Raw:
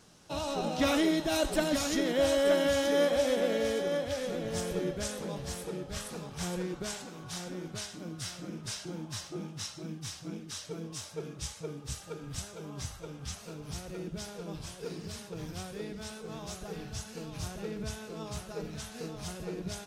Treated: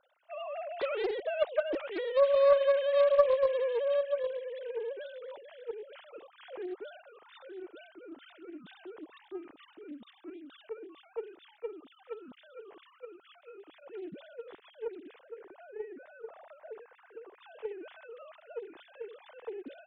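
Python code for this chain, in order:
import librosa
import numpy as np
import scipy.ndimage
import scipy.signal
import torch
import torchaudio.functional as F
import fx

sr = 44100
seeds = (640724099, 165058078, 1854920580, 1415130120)

y = fx.sine_speech(x, sr)
y = fx.lowpass(y, sr, hz=2100.0, slope=24, at=(15.21, 17.41))
y = fx.doppler_dist(y, sr, depth_ms=0.36)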